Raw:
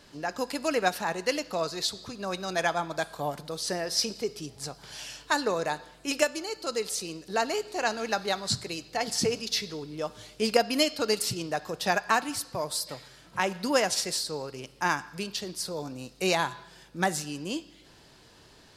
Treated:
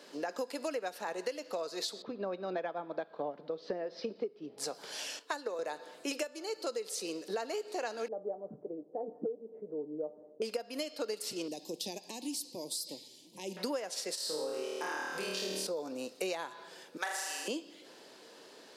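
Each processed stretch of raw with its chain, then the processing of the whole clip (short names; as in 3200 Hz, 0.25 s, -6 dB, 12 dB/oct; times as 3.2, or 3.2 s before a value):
2.02–4.58 LPF 4100 Hz 24 dB/oct + tilt -3 dB/oct + upward expander, over -35 dBFS
5.19–5.59 HPF 220 Hz + upward expander, over -42 dBFS
8.08–10.42 inverse Chebyshev low-pass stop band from 3800 Hz, stop band 80 dB + resonator 150 Hz, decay 0.16 s
11.48–13.57 band shelf 550 Hz -11 dB 1 oct + compressor 2.5:1, threshold -32 dBFS + Butterworth band-stop 1400 Hz, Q 0.5
14.15–15.67 doubler 23 ms -14 dB + compressor 5:1, threshold -35 dBFS + flutter echo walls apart 4.5 m, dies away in 1.4 s
16.97–17.48 HPF 1000 Hz + flutter echo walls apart 6.7 m, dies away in 0.97 s
whole clip: HPF 230 Hz 24 dB/oct; bell 500 Hz +7.5 dB 0.65 oct; compressor 16:1, threshold -33 dBFS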